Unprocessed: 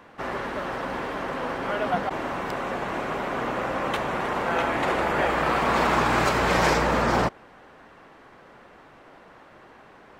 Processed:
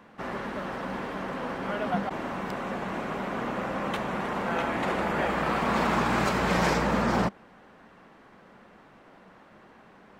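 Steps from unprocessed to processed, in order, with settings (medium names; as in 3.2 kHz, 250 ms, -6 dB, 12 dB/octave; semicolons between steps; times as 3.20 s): peaking EQ 200 Hz +9.5 dB 0.5 oct; trim -4.5 dB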